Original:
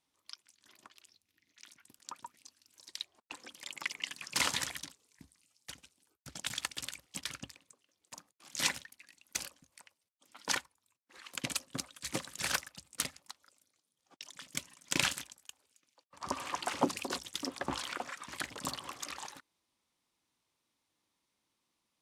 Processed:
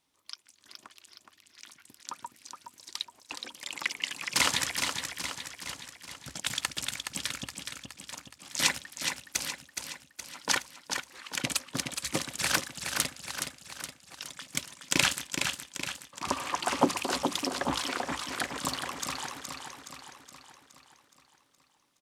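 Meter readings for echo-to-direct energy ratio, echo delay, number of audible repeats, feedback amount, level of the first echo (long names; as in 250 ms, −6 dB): −4.5 dB, 419 ms, 6, 54%, −6.0 dB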